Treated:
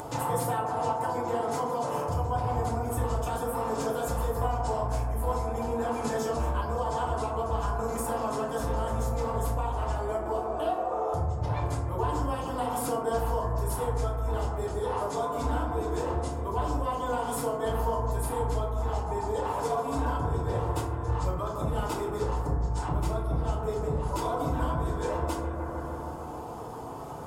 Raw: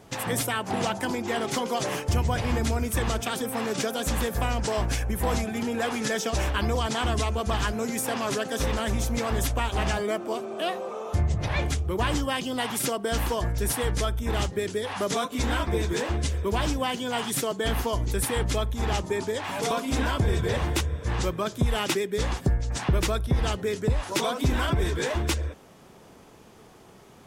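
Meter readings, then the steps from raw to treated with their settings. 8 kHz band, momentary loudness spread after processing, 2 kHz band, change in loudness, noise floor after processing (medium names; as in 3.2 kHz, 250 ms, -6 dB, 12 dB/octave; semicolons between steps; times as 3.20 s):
-9.0 dB, 2 LU, -10.5 dB, -3.0 dB, -36 dBFS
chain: graphic EQ 250/1000/2000/4000 Hz -7/+9/-11/-4 dB; bucket-brigade echo 153 ms, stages 2048, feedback 66%, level -9 dB; compression 6:1, threshold -37 dBFS, peak gain reduction 17 dB; peaking EQ 570 Hz +3.5 dB 0.4 oct; FDN reverb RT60 0.79 s, low-frequency decay 1.6×, high-frequency decay 0.4×, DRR -6.5 dB; upward compressor, threshold -34 dBFS; band-stop 5.9 kHz, Q 13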